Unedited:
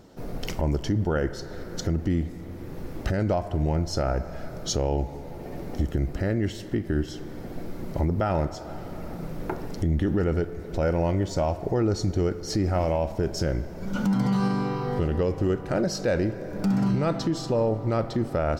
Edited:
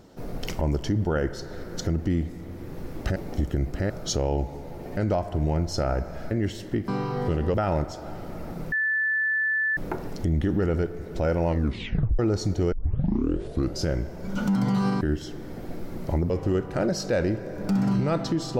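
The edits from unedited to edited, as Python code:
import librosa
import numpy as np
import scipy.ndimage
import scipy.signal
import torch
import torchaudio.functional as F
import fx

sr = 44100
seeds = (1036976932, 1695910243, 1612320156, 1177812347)

y = fx.edit(x, sr, fx.swap(start_s=3.16, length_s=1.34, other_s=5.57, other_length_s=0.74),
    fx.swap(start_s=6.88, length_s=1.29, other_s=14.59, other_length_s=0.66),
    fx.insert_tone(at_s=9.35, length_s=1.05, hz=1750.0, db=-21.5),
    fx.tape_stop(start_s=11.06, length_s=0.71),
    fx.tape_start(start_s=12.3, length_s=1.14), tone=tone)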